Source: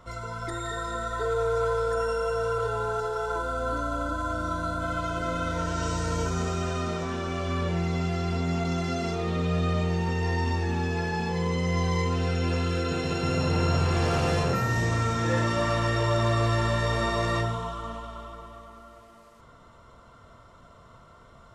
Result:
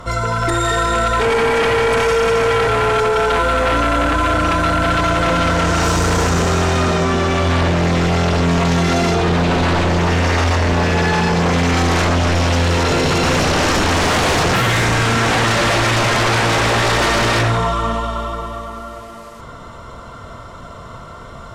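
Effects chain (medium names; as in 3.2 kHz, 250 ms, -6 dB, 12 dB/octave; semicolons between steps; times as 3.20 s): sine folder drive 14 dB, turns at -12 dBFS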